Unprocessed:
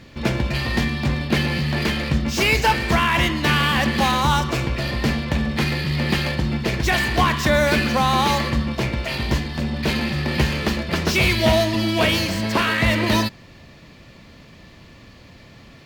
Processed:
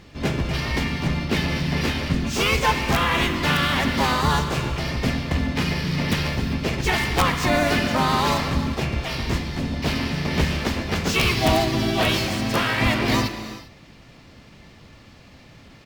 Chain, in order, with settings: wrapped overs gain 6.5 dB; harmoniser -12 st -7 dB, +3 st -2 dB; non-linear reverb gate 0.42 s flat, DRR 9.5 dB; gain -5 dB

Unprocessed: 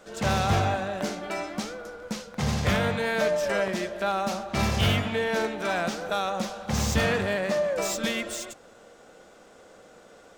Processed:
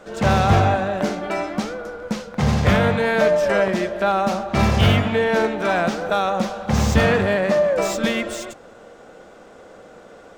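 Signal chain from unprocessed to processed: high shelf 3100 Hz -9.5 dB; gain +8.5 dB

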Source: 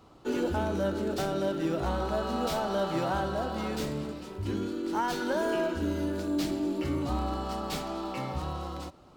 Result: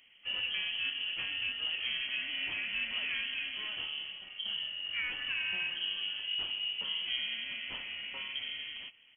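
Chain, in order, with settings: harmoniser -3 st -10 dB, +5 st -13 dB; inverted band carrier 3200 Hz; gain -7 dB

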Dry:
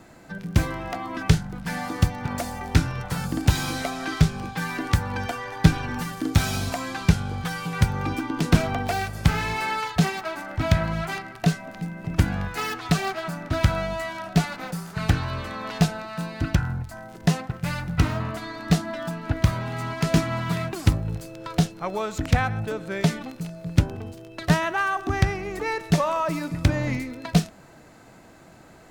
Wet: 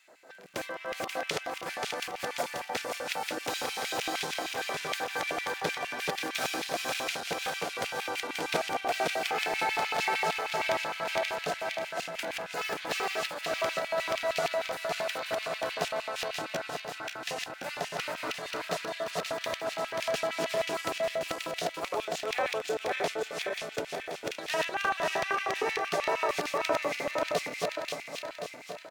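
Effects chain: regenerating reverse delay 0.267 s, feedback 74%, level -1 dB; echo 0.566 s -11.5 dB; LFO high-pass square 6.5 Hz 510–2500 Hz; gain -8 dB

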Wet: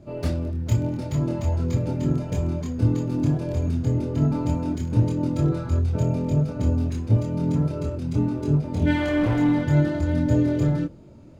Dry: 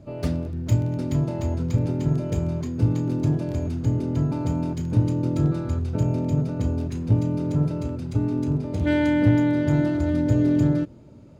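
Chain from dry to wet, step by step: 8.96–9.62 hard clip -17.5 dBFS, distortion -19 dB; chorus voices 6, 0.49 Hz, delay 25 ms, depth 3.2 ms; gain +4 dB

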